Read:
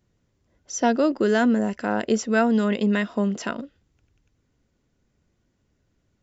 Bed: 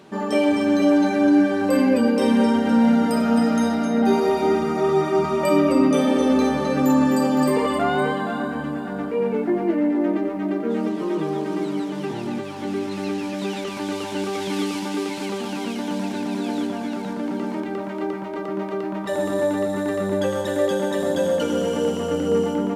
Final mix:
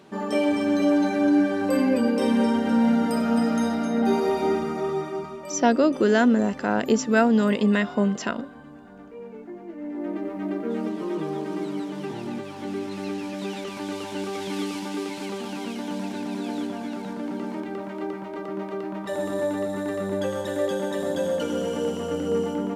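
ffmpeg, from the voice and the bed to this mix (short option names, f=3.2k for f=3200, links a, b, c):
-filter_complex "[0:a]adelay=4800,volume=1dB[a];[1:a]volume=9.5dB,afade=t=out:st=4.47:d=0.96:silence=0.199526,afade=t=in:st=9.75:d=0.68:silence=0.223872[b];[a][b]amix=inputs=2:normalize=0"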